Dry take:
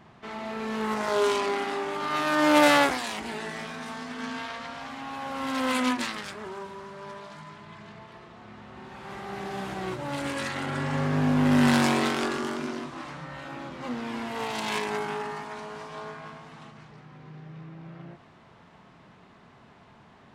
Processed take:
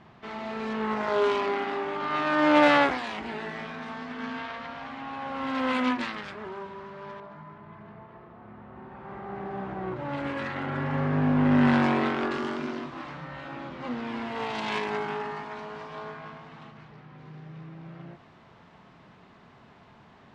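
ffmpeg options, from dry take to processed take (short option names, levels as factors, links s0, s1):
-af "asetnsamples=n=441:p=0,asendcmd='0.73 lowpass f 3100;7.2 lowpass f 1400;9.96 lowpass f 2300;12.31 lowpass f 3900;17.18 lowpass f 6400',lowpass=5200"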